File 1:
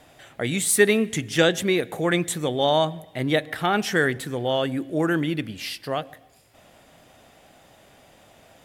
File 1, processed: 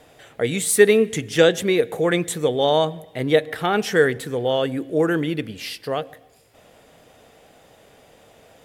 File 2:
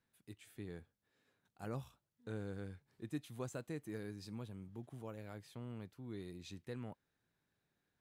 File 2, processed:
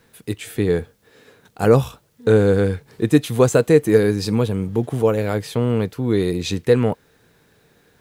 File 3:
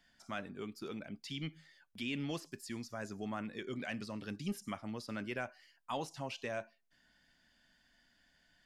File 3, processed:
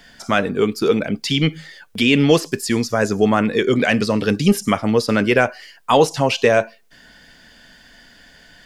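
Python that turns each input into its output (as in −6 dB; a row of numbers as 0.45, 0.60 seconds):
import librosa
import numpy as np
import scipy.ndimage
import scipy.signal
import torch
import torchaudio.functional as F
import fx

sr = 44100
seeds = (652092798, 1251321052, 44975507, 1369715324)

y = fx.peak_eq(x, sr, hz=460.0, db=10.0, octaves=0.29)
y = y * 10.0 ** (-1.5 / 20.0) / np.max(np.abs(y))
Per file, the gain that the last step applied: +0.5, +27.0, +23.5 decibels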